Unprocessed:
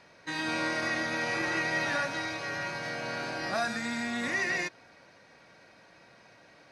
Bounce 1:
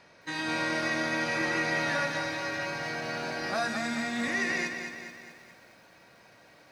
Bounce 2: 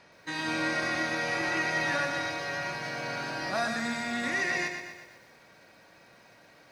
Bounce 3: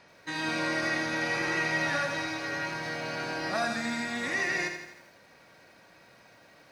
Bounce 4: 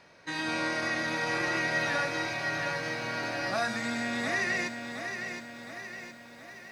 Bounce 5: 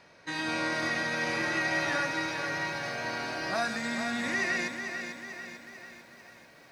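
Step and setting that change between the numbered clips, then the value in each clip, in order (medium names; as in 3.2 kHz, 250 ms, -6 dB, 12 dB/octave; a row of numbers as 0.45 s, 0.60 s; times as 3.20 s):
bit-crushed delay, time: 215 ms, 121 ms, 82 ms, 716 ms, 444 ms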